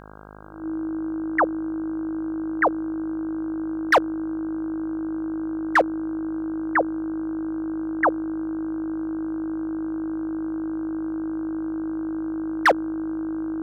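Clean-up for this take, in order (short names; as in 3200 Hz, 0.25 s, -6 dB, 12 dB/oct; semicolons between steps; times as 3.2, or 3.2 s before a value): clip repair -11.5 dBFS; de-hum 51.7 Hz, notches 31; notch 320 Hz, Q 30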